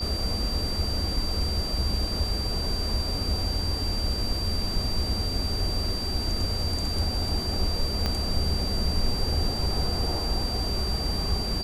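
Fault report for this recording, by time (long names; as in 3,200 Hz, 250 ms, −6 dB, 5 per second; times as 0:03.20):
whistle 4,700 Hz −31 dBFS
0:08.06: click −13 dBFS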